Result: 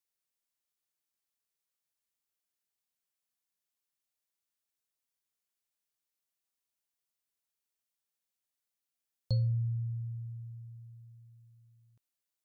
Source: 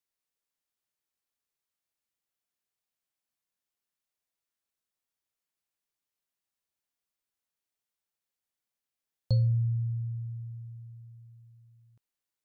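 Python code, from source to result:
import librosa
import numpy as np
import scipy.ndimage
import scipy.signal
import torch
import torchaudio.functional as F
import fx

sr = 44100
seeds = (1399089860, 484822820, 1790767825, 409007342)

y = fx.high_shelf(x, sr, hz=3600.0, db=6.0)
y = F.gain(torch.from_numpy(y), -4.5).numpy()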